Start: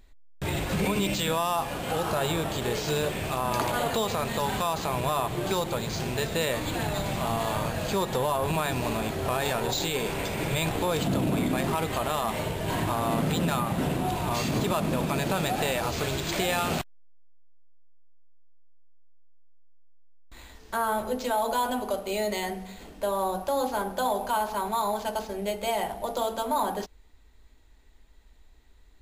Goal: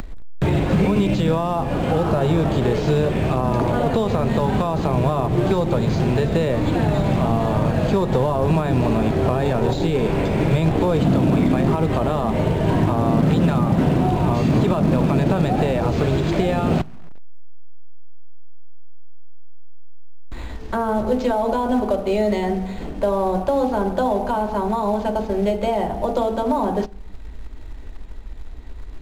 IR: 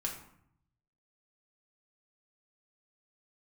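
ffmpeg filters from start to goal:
-filter_complex "[0:a]acrossover=split=110|650|7300[link_01][link_02][link_03][link_04];[link_01]acompressor=threshold=-42dB:ratio=4[link_05];[link_02]acompressor=threshold=-30dB:ratio=4[link_06];[link_03]acompressor=threshold=-36dB:ratio=4[link_07];[link_04]acompressor=threshold=-50dB:ratio=4[link_08];[link_05][link_06][link_07][link_08]amix=inputs=4:normalize=0,lowshelf=frequency=470:gain=8,asplit=2[link_09][link_10];[1:a]atrim=start_sample=2205[link_11];[link_10][link_11]afir=irnorm=-1:irlink=0,volume=-20dB[link_12];[link_09][link_12]amix=inputs=2:normalize=0,acrusher=bits=5:mode=log:mix=0:aa=0.000001,aemphasis=mode=reproduction:type=75kf,acompressor=mode=upward:threshold=-30dB:ratio=2.5,volume=7.5dB"

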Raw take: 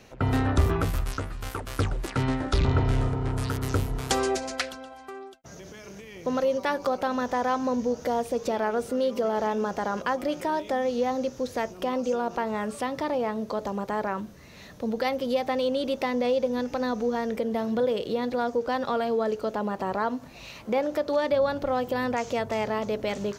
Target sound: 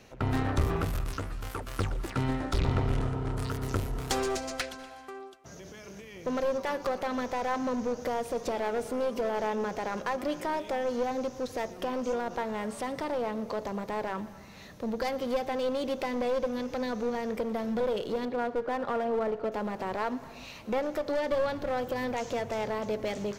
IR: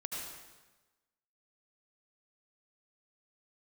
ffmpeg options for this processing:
-filter_complex "[0:a]asettb=1/sr,asplit=3[link_01][link_02][link_03];[link_01]atrim=end=18.254[link_04];[link_02]atrim=start=18.25:end=19.52,asetpts=PTS-STARTPTS,afade=type=in:duration=0.004:curve=qsin,afade=type=out:start_time=1.266:duration=0.004:curve=qsin,highpass=100,lowpass=2200[link_05];[link_03]atrim=start=19.516[link_06];[link_04][link_05]acrossfade=duration=0.004:curve1=hsin:curve2=qsin[link_07];[link_07][link_06]acrossfade=duration=0.004:curve1=qsin:curve2=hsin,aeval=exprs='clip(val(0),-1,0.0473)':channel_layout=same,asplit=2[link_08][link_09];[1:a]atrim=start_sample=2205,adelay=117[link_10];[link_09][link_10]afir=irnorm=-1:irlink=0,volume=-16.5dB[link_11];[link_08][link_11]amix=inputs=2:normalize=0,volume=-2.5dB"

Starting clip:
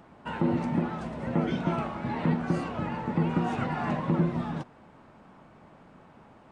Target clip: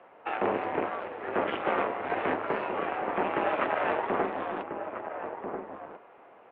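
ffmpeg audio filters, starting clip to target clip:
ffmpeg -i in.wav -filter_complex "[0:a]aeval=exprs='0.211*(cos(1*acos(clip(val(0)/0.211,-1,1)))-cos(1*PI/2))+0.0944*(cos(4*acos(clip(val(0)/0.211,-1,1)))-cos(4*PI/2))':channel_layout=same,asplit=2[link_01][link_02];[link_02]adelay=1341,volume=-6dB,highshelf=frequency=4000:gain=-30.2[link_03];[link_01][link_03]amix=inputs=2:normalize=0,highpass=frequency=520:width_type=q:width=0.5412,highpass=frequency=520:width_type=q:width=1.307,lowpass=frequency=3100:width_type=q:width=0.5176,lowpass=frequency=3100:width_type=q:width=0.7071,lowpass=frequency=3100:width_type=q:width=1.932,afreqshift=-140,volume=3dB" out.wav

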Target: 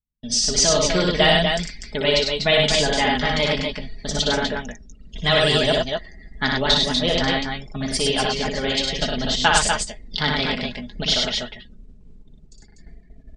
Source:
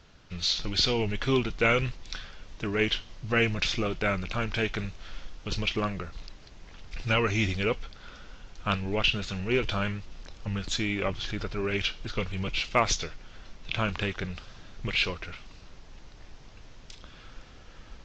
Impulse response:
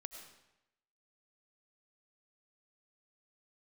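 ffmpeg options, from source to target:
-af "afftdn=noise_reduction=30:noise_floor=-44,agate=range=-29dB:threshold=-46dB:ratio=16:detection=peak,lowshelf=frequency=92:gain=-6.5,aecho=1:1:6.4:0.62,aecho=1:1:81|135|330|352:0.631|0.708|0.562|0.2,asetrate=59535,aresample=44100,volume=5.5dB" -ar 32000 -c:a libmp3lame -b:a 96k

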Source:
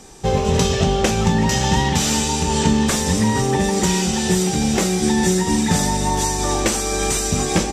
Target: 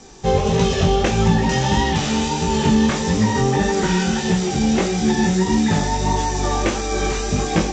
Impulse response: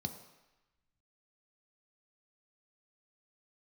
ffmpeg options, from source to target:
-filter_complex "[0:a]asettb=1/sr,asplit=3[link_01][link_02][link_03];[link_01]atrim=end=3.594[link_04];[link_02]atrim=start=3.59:end=4.19,asetpts=PTS-STARTPTS,afade=type=in:duration=0.004:curve=qsin,afade=type=out:start_time=0.596:duration=0.004:curve=qsin,equalizer=frequency=1500:width=6.1:gain=11[link_05];[link_03]atrim=start=4.186[link_06];[link_04][link_05]acrossfade=duration=0.004:curve1=hsin:curve2=qsin[link_07];[link_07][link_06]acrossfade=duration=0.004:curve1=qsin:curve2=hsin,acrossover=split=700|3500[link_08][link_09][link_10];[link_10]alimiter=limit=-23dB:level=0:latency=1[link_11];[link_08][link_09][link_11]amix=inputs=3:normalize=0,flanger=delay=17.5:depth=5.6:speed=1.6,volume=3dB" -ar 16000 -c:a g722

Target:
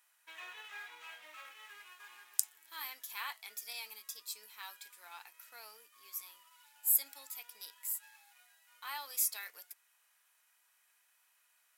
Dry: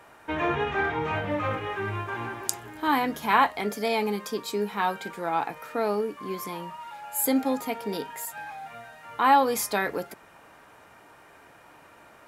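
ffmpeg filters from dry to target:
ffmpeg -i in.wav -filter_complex "[0:a]highpass=frequency=1400:poles=1,asplit=2[link_01][link_02];[link_02]aeval=exprs='sgn(val(0))*max(abs(val(0))-0.00473,0)':channel_layout=same,volume=-4dB[link_03];[link_01][link_03]amix=inputs=2:normalize=0,aderivative,asetrate=45938,aresample=44100,volume=-7dB" out.wav

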